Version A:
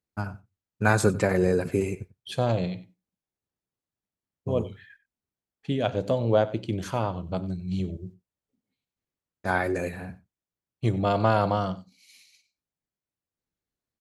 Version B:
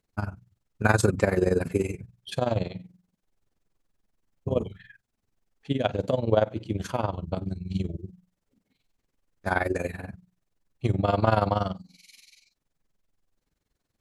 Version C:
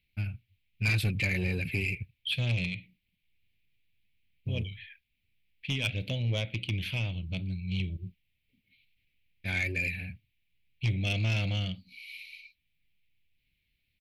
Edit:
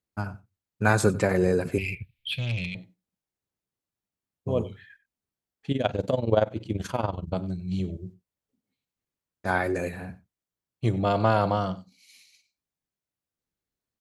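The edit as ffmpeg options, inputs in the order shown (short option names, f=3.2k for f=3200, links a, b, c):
-filter_complex "[0:a]asplit=3[a][b][c];[a]atrim=end=1.782[d];[2:a]atrim=start=1.778:end=2.752[e];[b]atrim=start=2.748:end=5.712[f];[1:a]atrim=start=5.708:end=7.352[g];[c]atrim=start=7.348[h];[d][e]acrossfade=d=0.004:c1=hsin:c2=hsin[i];[i][f]acrossfade=d=0.004:c1=hsin:c2=hsin[j];[j][g]acrossfade=d=0.004:c1=hsin:c2=hsin[k];[k][h]acrossfade=d=0.004:c1=hsin:c2=hsin"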